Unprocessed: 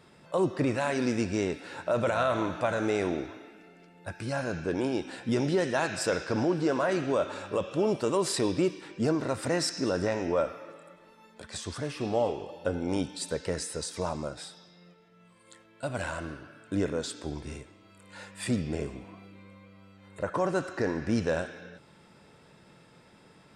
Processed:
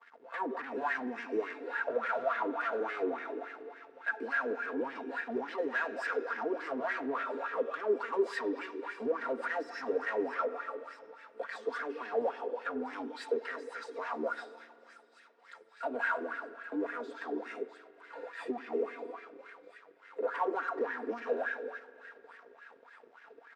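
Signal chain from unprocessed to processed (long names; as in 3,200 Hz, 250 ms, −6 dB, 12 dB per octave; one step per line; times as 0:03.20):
Butterworth high-pass 230 Hz 96 dB per octave
high-shelf EQ 6,800 Hz −9.5 dB
comb filter 4.3 ms, depth 99%
dynamic equaliser 520 Hz, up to −6 dB, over −39 dBFS, Q 1.4
leveller curve on the samples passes 2
downward compressor, threshold −24 dBFS, peak gain reduction 6 dB
leveller curve on the samples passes 2
delay with a high-pass on its return 648 ms, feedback 80%, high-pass 1,900 Hz, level −16.5 dB
LFO wah 3.5 Hz 370–1,800 Hz, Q 5.8
spring reverb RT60 2.7 s, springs 43 ms, chirp 65 ms, DRR 17.5 dB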